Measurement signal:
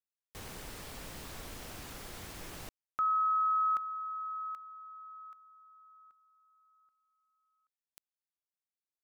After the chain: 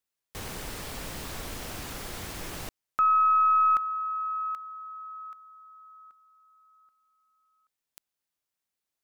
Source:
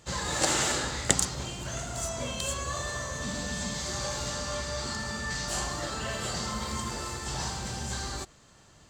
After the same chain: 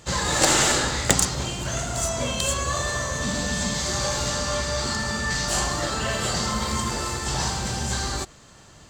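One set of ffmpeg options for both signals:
-af "apsyclip=2.24,aeval=exprs='1*(cos(1*acos(clip(val(0)/1,-1,1)))-cos(1*PI/2))+0.224*(cos(5*acos(clip(val(0)/1,-1,1)))-cos(5*PI/2))+0.0708*(cos(7*acos(clip(val(0)/1,-1,1)))-cos(7*PI/2))+0.0355*(cos(8*acos(clip(val(0)/1,-1,1)))-cos(8*PI/2))':c=same,volume=0.668"

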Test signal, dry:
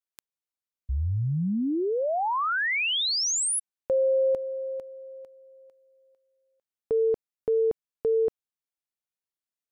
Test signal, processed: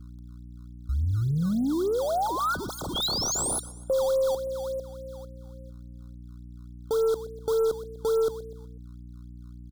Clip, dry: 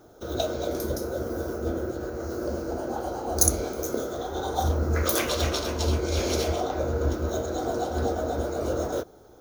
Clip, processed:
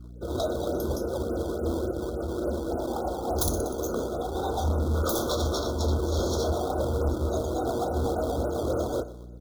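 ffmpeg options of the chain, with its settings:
-filter_complex "[0:a]afftdn=nr=22:nf=-41,aecho=1:1:123|246|369|492:0.126|0.0579|0.0266|0.0123,aeval=exprs='val(0)+0.00631*(sin(2*PI*60*n/s)+sin(2*PI*2*60*n/s)/2+sin(2*PI*3*60*n/s)/3+sin(2*PI*4*60*n/s)/4+sin(2*PI*5*60*n/s)/5)':c=same,aeval=exprs='0.668*(cos(1*acos(clip(val(0)/0.668,-1,1)))-cos(1*PI/2))+0.119*(cos(2*acos(clip(val(0)/0.668,-1,1)))-cos(2*PI/2))+0.237*(cos(7*acos(clip(val(0)/0.668,-1,1)))-cos(7*PI/2))':c=same,asplit=2[s0][s1];[s1]acrusher=samples=19:mix=1:aa=0.000001:lfo=1:lforange=30.4:lforate=3.5,volume=0.631[s2];[s0][s2]amix=inputs=2:normalize=0,aeval=exprs='0.335*(abs(mod(val(0)/0.335+3,4)-2)-1)':c=same,afftfilt=real='re*(1-between(b*sr/4096,1500,3200))':imag='im*(1-between(b*sr/4096,1500,3200))':win_size=4096:overlap=0.75,volume=0.531"

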